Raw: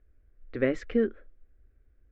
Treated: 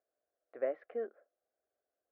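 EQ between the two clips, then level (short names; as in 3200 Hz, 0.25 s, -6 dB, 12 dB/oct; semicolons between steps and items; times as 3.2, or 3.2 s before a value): ladder band-pass 730 Hz, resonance 65%; air absorption 150 m; +4.0 dB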